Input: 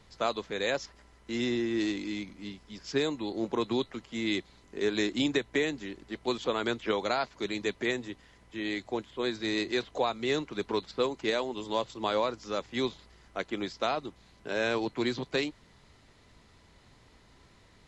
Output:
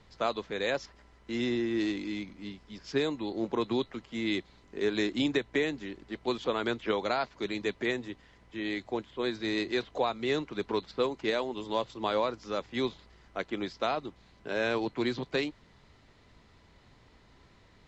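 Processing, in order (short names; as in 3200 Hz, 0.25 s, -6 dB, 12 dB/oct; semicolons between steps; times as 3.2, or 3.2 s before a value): air absorption 75 m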